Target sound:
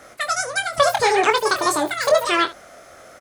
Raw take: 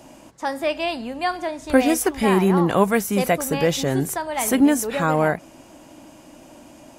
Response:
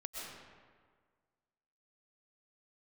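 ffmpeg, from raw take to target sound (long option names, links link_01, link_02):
-af "highshelf=frequency=5600:width_type=q:width=3:gain=-8.5,asetrate=96138,aresample=44100,aecho=1:1:23|74:0.447|0.141"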